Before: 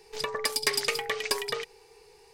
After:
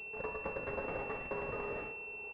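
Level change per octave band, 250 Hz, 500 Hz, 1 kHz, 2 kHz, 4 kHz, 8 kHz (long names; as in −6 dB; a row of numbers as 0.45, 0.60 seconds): +0.5 dB, −5.5 dB, −6.5 dB, −8.0 dB, below −30 dB, below −40 dB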